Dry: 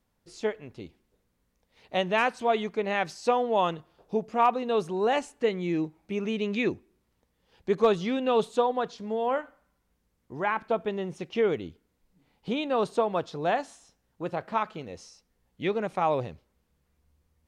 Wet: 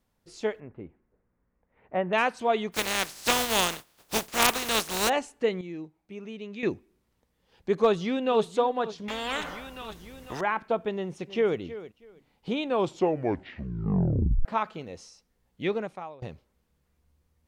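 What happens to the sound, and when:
0:00.60–0:02.13: inverse Chebyshev low-pass filter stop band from 6,200 Hz, stop band 60 dB
0:02.72–0:05.08: compressing power law on the bin magnitudes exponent 0.28
0:05.61–0:06.63: clip gain −10 dB
0:07.80–0:08.43: delay throw 500 ms, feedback 40%, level −15.5 dB
0:09.08–0:10.41: every bin compressed towards the loudest bin 4 to 1
0:10.95–0:11.59: delay throw 320 ms, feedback 20%, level −14.5 dB
0:12.64: tape stop 1.81 s
0:15.75–0:16.22: fade out quadratic, to −23 dB

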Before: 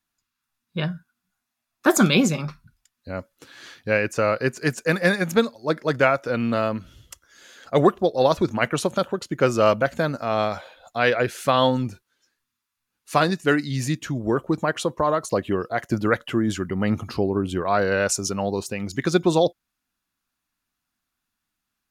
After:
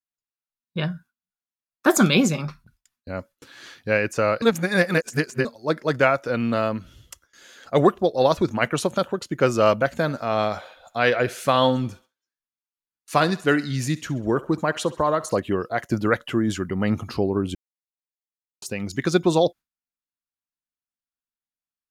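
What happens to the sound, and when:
0:04.42–0:05.45: reverse
0:09.91–0:15.40: feedback echo with a high-pass in the loop 66 ms, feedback 52%, level −18 dB
0:17.55–0:18.62: silence
whole clip: noise gate with hold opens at −43 dBFS

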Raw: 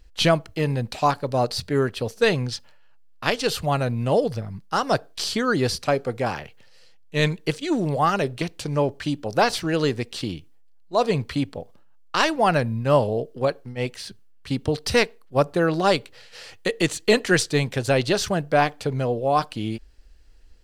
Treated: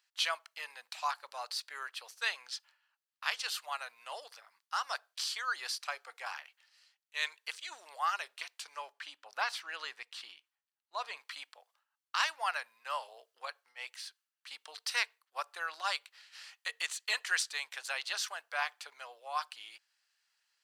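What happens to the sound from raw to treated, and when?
0:08.92–0:11.17: bass and treble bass +12 dB, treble −7 dB
whole clip: high-pass filter 1,000 Hz 24 dB per octave; level −8.5 dB

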